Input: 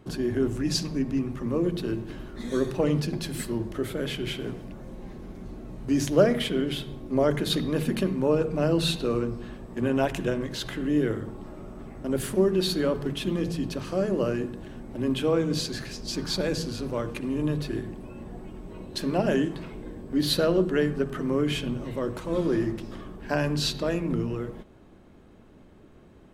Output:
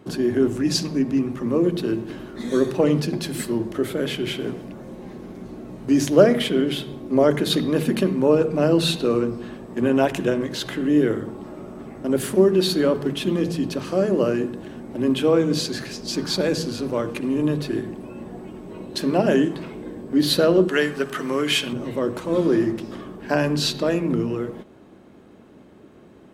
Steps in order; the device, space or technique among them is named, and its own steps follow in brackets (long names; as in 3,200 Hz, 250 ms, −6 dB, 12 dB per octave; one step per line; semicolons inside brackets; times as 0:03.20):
0:20.68–0:21.73: tilt shelving filter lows −8 dB, about 730 Hz
filter by subtraction (in parallel: low-pass filter 270 Hz 12 dB per octave + polarity inversion)
on the sum: level +4.5 dB